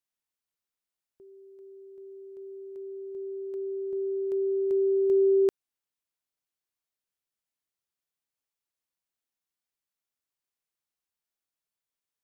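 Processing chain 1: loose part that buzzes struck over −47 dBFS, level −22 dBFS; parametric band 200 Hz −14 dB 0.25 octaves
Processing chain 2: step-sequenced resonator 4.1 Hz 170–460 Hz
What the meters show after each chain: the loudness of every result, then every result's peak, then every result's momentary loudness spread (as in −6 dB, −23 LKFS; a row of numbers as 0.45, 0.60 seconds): −26.5, −37.0 LKFS; −14.5, −26.0 dBFS; 21, 22 LU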